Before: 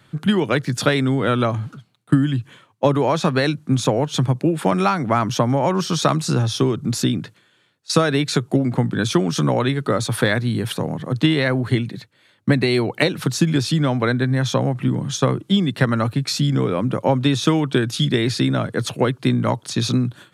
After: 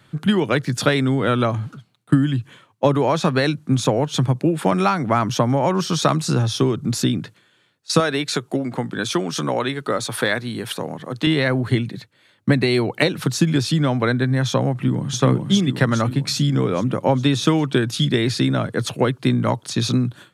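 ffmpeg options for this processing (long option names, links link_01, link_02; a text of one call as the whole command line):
ffmpeg -i in.wav -filter_complex "[0:a]asettb=1/sr,asplit=3[link_01][link_02][link_03];[link_01]atrim=end=8.004[link_04];[link_02]atrim=start=8:end=11.27,asetpts=PTS-STARTPTS,afade=type=in:duration=0.004:curve=qsin,afade=type=out:start_time=3.266:duration=0.004:curve=qsin,highpass=frequency=360:poles=1[link_05];[link_03]atrim=start=11.266[link_06];[link_04][link_05]acrossfade=duration=0.004:curve1=hsin:curve2=qsin[link_07];[link_07][link_06]acrossfade=duration=0.004:curve1=qsin:curve2=hsin,asplit=2[link_08][link_09];[link_09]afade=type=in:start_time=14.72:duration=0.01,afade=type=out:start_time=15.19:duration=0.01,aecho=0:1:410|820|1230|1640|2050|2460|2870|3280|3690:0.707946|0.424767|0.25486|0.152916|0.0917498|0.0550499|0.0330299|0.019818|0.0118908[link_10];[link_08][link_10]amix=inputs=2:normalize=0" out.wav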